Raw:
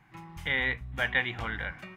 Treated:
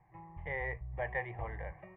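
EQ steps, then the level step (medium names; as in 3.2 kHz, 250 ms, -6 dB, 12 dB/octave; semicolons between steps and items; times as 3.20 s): Chebyshev low-pass 1.9 kHz, order 4; static phaser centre 600 Hz, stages 4; 0.0 dB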